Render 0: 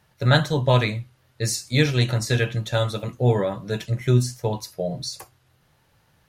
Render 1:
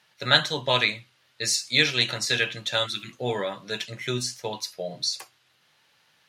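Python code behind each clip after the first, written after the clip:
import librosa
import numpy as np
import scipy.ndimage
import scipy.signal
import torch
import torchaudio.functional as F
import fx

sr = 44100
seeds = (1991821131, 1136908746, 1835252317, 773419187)

y = fx.spec_repair(x, sr, seeds[0], start_s=2.88, length_s=0.22, low_hz=400.0, high_hz=1300.0, source='after')
y = scipy.signal.sosfilt(scipy.signal.butter(2, 190.0, 'highpass', fs=sr, output='sos'), y)
y = fx.peak_eq(y, sr, hz=3400.0, db=14.5, octaves=2.9)
y = F.gain(torch.from_numpy(y), -8.0).numpy()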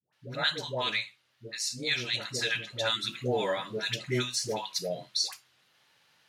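y = fx.hum_notches(x, sr, base_hz=50, count=4)
y = fx.rider(y, sr, range_db=5, speed_s=0.5)
y = fx.dispersion(y, sr, late='highs', ms=129.0, hz=650.0)
y = F.gain(torch.from_numpy(y), -5.0).numpy()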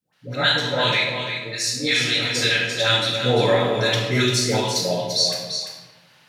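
y = x + 10.0 ** (-7.5 / 20.0) * np.pad(x, (int(344 * sr / 1000.0), 0))[:len(x)]
y = fx.room_shoebox(y, sr, seeds[1], volume_m3=640.0, walls='mixed', distance_m=2.1)
y = F.gain(torch.from_numpy(y), 5.5).numpy()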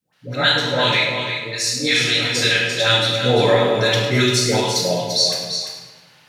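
y = fx.echo_feedback(x, sr, ms=104, feedback_pct=48, wet_db=-12.0)
y = F.gain(torch.from_numpy(y), 2.5).numpy()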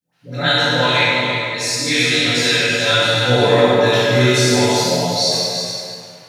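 y = fx.rev_plate(x, sr, seeds[2], rt60_s=2.1, hf_ratio=0.7, predelay_ms=0, drr_db=-9.0)
y = F.gain(torch.from_numpy(y), -6.5).numpy()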